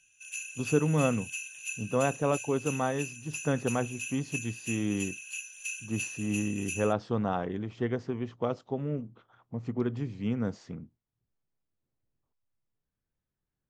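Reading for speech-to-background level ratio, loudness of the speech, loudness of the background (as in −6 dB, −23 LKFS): 6.0 dB, −32.0 LKFS, −38.0 LKFS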